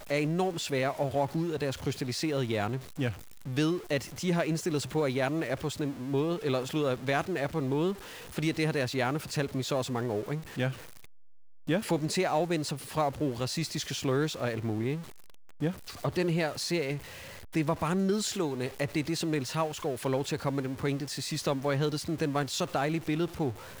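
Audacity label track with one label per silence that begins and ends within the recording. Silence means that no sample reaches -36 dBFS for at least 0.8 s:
10.720000	11.680000	silence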